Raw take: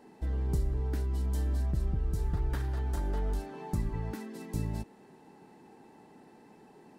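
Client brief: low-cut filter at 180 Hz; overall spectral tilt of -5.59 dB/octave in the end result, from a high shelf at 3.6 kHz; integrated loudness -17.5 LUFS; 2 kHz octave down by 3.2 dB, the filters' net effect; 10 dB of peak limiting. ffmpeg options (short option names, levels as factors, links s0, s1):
-af "highpass=180,equalizer=f=2000:t=o:g=-5.5,highshelf=f=3600:g=5.5,volume=20,alimiter=limit=0.473:level=0:latency=1"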